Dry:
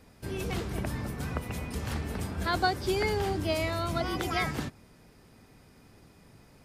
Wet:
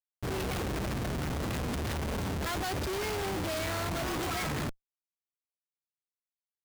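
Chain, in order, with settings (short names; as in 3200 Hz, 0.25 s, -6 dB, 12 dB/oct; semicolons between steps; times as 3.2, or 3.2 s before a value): Schmitt trigger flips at -42 dBFS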